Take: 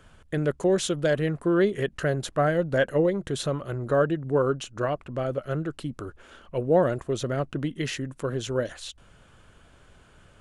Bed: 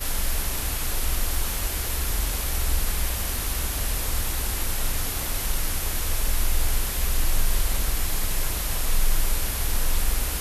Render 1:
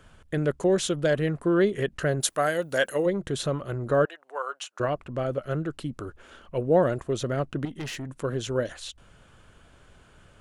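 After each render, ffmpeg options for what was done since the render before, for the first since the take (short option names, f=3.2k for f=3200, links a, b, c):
-filter_complex "[0:a]asplit=3[a][b][c];[a]afade=t=out:st=2.2:d=0.02[d];[b]aemphasis=mode=production:type=riaa,afade=t=in:st=2.2:d=0.02,afade=t=out:st=3.05:d=0.02[e];[c]afade=t=in:st=3.05:d=0.02[f];[d][e][f]amix=inputs=3:normalize=0,asettb=1/sr,asplit=3[g][h][i];[g]atrim=end=4.054[j];[h]atrim=start=4.05:end=4.8,asetpts=PTS-STARTPTS,afade=t=in:d=0.004:c=qsin,afade=t=out:st=0.746:d=0.004:c=qsin,highpass=f=710:w=0.5412,highpass=f=710:w=1.3066[k];[i]atrim=start=4.796[l];[j][k]acrossfade=d=0.004:c1=hsin:c2=qsin[m];[m][l]acrossfade=d=0.004:c1=qsin:c2=hsin,asettb=1/sr,asplit=3[n][o][p];[n]atrim=end=7.654[q];[o]atrim=start=7.65:end=8.09,asetpts=PTS-STARTPTS,afade=t=in:d=0.004:c=qsin,afade=t=out:st=0.436:d=0.004:c=qsin,aeval=exprs='(tanh(31.6*val(0)+0.25)-tanh(0.25))/31.6':c=same[r];[p]atrim=start=8.086[s];[q][r]acrossfade=d=0.004:c1=hsin:c2=qsin[t];[t][s]acrossfade=d=0.004:c1=qsin:c2=hsin"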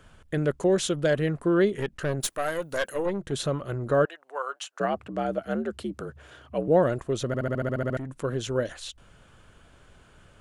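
-filter_complex "[0:a]asettb=1/sr,asplit=3[a][b][c];[a]atrim=end=1.764[d];[b]atrim=start=1.76:end=3.32,asetpts=PTS-STARTPTS,afade=t=in:d=0.004:c=qsin,afade=t=out:st=1.556:d=0.004:c=qsin,aeval=exprs='(tanh(8.91*val(0)+0.55)-tanh(0.55))/8.91':c=same[e];[c]atrim=start=3.316[f];[d][e]acrossfade=d=0.004:c1=hsin:c2=qsin[g];[g][f]acrossfade=d=0.004:c1=qsin:c2=hsin,asettb=1/sr,asplit=3[h][i][j];[h]atrim=end=4.564[k];[i]atrim=start=4.56:end=6.68,asetpts=PTS-STARTPTS,afade=t=in:d=0.004:c=qsin,afade=t=out:st=2.116:d=0.004:c=qsin,afreqshift=64[l];[j]atrim=start=6.676[m];[k][l]acrossfade=d=0.004:c1=hsin:c2=qsin[n];[n][m]acrossfade=d=0.004:c1=qsin:c2=hsin,asplit=11[o][p][q][r][s][t][u][v][w][x][y];[o]atrim=end=7.342[z];[p]atrim=start=7.268:end=7.342[aa];[q]atrim=start=7.268:end=7.342[ab];[r]atrim=start=7.268:end=7.342[ac];[s]atrim=start=7.268:end=7.342[ad];[t]atrim=start=7.268:end=7.342[ae];[u]atrim=start=7.268:end=7.342[af];[v]atrim=start=7.268:end=7.342[ag];[w]atrim=start=7.268:end=7.342[ah];[x]atrim=start=7.268:end=7.342[ai];[y]atrim=start=7.968[aj];[z][aa]acrossfade=d=0.004:c1=hsin:c2=hsin[ak];[ak][ab]acrossfade=d=0.004:c1=hsin:c2=hsin[al];[al][ac]acrossfade=d=0.004:c1=hsin:c2=hsin[am];[am][ad]acrossfade=d=0.004:c1=hsin:c2=hsin[an];[an][ae]acrossfade=d=0.004:c1=hsin:c2=hsin[ao];[ao][af]acrossfade=d=0.004:c1=hsin:c2=hsin[ap];[ap][ag]acrossfade=d=0.004:c1=hsin:c2=hsin[aq];[aq][ah]acrossfade=d=0.004:c1=hsin:c2=hsin[ar];[ar][ai]acrossfade=d=0.004:c1=hsin:c2=hsin[as];[as][aj]acrossfade=d=0.004:c1=hsin:c2=hsin"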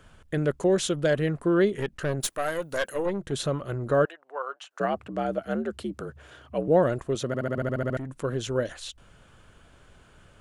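-filter_complex "[0:a]asettb=1/sr,asplit=3[a][b][c];[a]atrim=end=4.124[d];[b]atrim=start=4.12:end=4.71,asetpts=PTS-STARTPTS,afade=t=in:d=0.004:c=qsin,afade=t=out:st=0.586:d=0.004:c=qsin,lowpass=f=1.8k:p=1[e];[c]atrim=start=4.706[f];[d][e]acrossfade=d=0.004:c1=hsin:c2=qsin[g];[g][f]acrossfade=d=0.004:c1=qsin:c2=hsin,asettb=1/sr,asplit=3[h][i][j];[h]atrim=end=7.154[k];[i]atrim=start=7.15:end=7.58,asetpts=PTS-STARTPTS,afade=t=in:d=0.004:c=qsin,afade=t=out:st=0.426:d=0.004:c=qsin,highpass=120[l];[j]atrim=start=7.576[m];[k][l]acrossfade=d=0.004:c1=hsin:c2=qsin[n];[n][m]acrossfade=d=0.004:c1=qsin:c2=hsin"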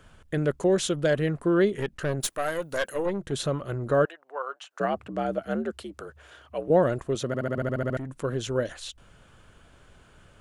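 -filter_complex "[0:a]asettb=1/sr,asplit=3[a][b][c];[a]atrim=end=5.714[d];[b]atrim=start=5.71:end=6.7,asetpts=PTS-STARTPTS,afade=t=in:d=0.004:c=qsin,afade=t=out:st=0.986:d=0.004:c=qsin,equalizer=f=170:t=o:w=1.8:g=-12[e];[c]atrim=start=6.696[f];[d][e]acrossfade=d=0.004:c1=hsin:c2=qsin[g];[g][f]acrossfade=d=0.004:c1=qsin:c2=hsin"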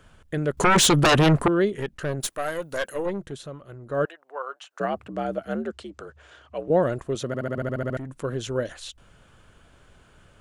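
-filter_complex "[0:a]asettb=1/sr,asplit=3[a][b][c];[a]atrim=end=0.574[d];[b]atrim=start=0.57:end=1.48,asetpts=PTS-STARTPTS,afade=t=in:d=0.004:c=qsin,afade=t=out:st=0.906:d=0.004:c=qsin,aeval=exprs='0.224*sin(PI/2*3.55*val(0)/0.224)':c=same[e];[c]atrim=start=1.476[f];[d][e]acrossfade=d=0.004:c1=hsin:c2=qsin[g];[g][f]acrossfade=d=0.004:c1=qsin:c2=hsin,asettb=1/sr,asplit=3[h][i][j];[h]atrim=end=5.684[k];[i]atrim=start=5.68:end=6.8,asetpts=PTS-STARTPTS,afade=t=in:d=0.004:c=qsin,afade=t=out:st=1.116:d=0.004:c=qsin,lowpass=f=8.3k:w=0.5412,lowpass=f=8.3k:w=1.3066[l];[j]atrim=start=6.796[m];[k][l]acrossfade=d=0.004:c1=hsin:c2=qsin[n];[n][m]acrossfade=d=0.004:c1=qsin:c2=hsin,asplit=3[o][p][q];[o]atrim=end=3.38,asetpts=PTS-STARTPTS,afade=t=out:st=3.21:d=0.17:silence=0.298538[r];[p]atrim=start=3.38:end=3.89,asetpts=PTS-STARTPTS,volume=-10.5dB[s];[q]atrim=start=3.89,asetpts=PTS-STARTPTS,afade=t=in:d=0.17:silence=0.298538[t];[r][s][t]concat=n=3:v=0:a=1"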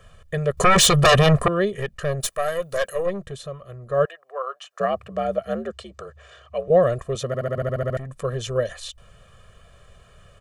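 -af "aecho=1:1:1.7:0.99"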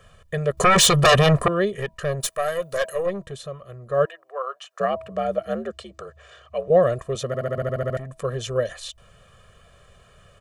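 -af "lowshelf=f=73:g=-6,bandreject=f=323.8:t=h:w=4,bandreject=f=647.6:t=h:w=4,bandreject=f=971.4:t=h:w=4"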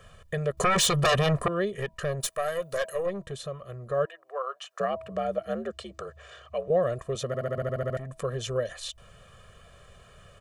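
-af "acompressor=threshold=-34dB:ratio=1.5"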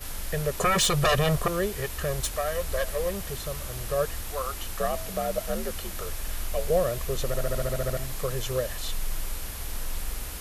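-filter_complex "[1:a]volume=-9dB[a];[0:a][a]amix=inputs=2:normalize=0"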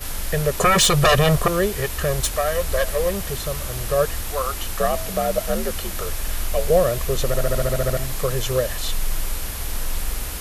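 -af "volume=7dB"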